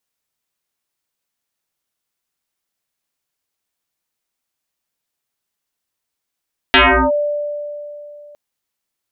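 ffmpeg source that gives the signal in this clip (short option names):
-f lavfi -i "aevalsrc='0.531*pow(10,-3*t/2.98)*sin(2*PI*588*t+9.1*clip(1-t/0.37,0,1)*sin(2*PI*0.55*588*t))':d=1.61:s=44100"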